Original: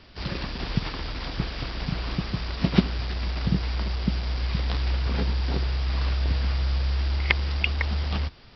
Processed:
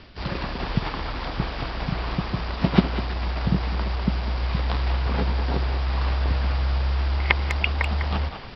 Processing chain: dynamic EQ 870 Hz, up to +6 dB, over -46 dBFS, Q 0.95; reverse; upward compressor, threshold -30 dBFS; reverse; air absorption 100 m; speakerphone echo 0.2 s, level -7 dB; gain +1.5 dB

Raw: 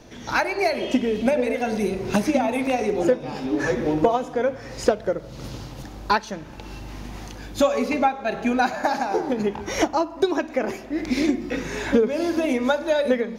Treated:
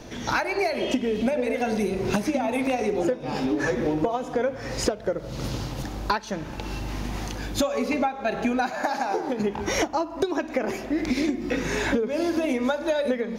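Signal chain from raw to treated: compressor 5:1, threshold -27 dBFS, peak gain reduction 13.5 dB; 8.7–9.4 low shelf 210 Hz -8.5 dB; gain +5 dB

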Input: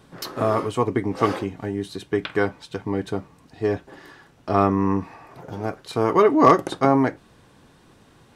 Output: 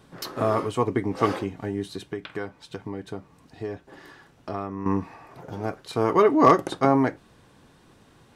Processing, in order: 2.1–4.86 compressor 2.5:1, threshold -31 dBFS, peak gain reduction 13 dB; gain -2 dB

